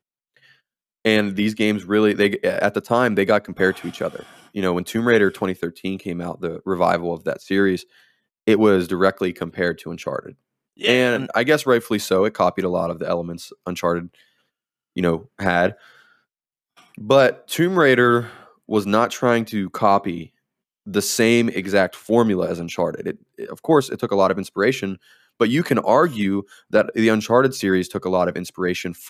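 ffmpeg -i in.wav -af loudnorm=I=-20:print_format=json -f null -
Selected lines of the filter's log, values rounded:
"input_i" : "-20.1",
"input_tp" : "-1.8",
"input_lra" : "2.9",
"input_thresh" : "-30.7",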